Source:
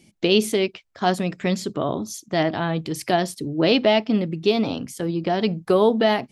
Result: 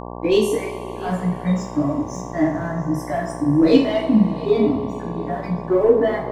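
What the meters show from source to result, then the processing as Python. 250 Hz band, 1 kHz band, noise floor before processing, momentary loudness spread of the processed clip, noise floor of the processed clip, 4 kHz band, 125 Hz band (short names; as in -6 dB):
+4.0 dB, -2.0 dB, -58 dBFS, 11 LU, -32 dBFS, -8.0 dB, +3.5 dB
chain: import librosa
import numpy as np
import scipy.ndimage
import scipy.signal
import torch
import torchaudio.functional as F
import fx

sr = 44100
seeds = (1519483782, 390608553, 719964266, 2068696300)

p1 = fx.noise_reduce_blind(x, sr, reduce_db=27)
p2 = p1 + fx.echo_single(p1, sr, ms=685, db=-20.0, dry=0)
p3 = fx.leveller(p2, sr, passes=1)
p4 = fx.low_shelf_res(p3, sr, hz=550.0, db=9.0, q=1.5)
p5 = fx.rev_double_slope(p4, sr, seeds[0], early_s=0.54, late_s=4.4, knee_db=-19, drr_db=-4.5)
p6 = fx.dmg_buzz(p5, sr, base_hz=60.0, harmonics=19, level_db=-21.0, tilt_db=-1, odd_only=False)
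y = F.gain(torch.from_numpy(p6), -11.5).numpy()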